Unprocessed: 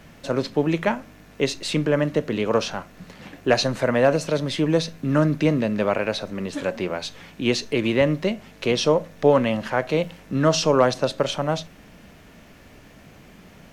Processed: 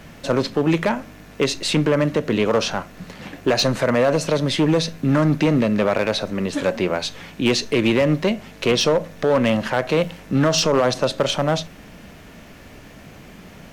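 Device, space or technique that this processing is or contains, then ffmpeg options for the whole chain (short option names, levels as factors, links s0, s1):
limiter into clipper: -af "alimiter=limit=0.251:level=0:latency=1:release=96,asoftclip=type=hard:threshold=0.141,volume=1.88"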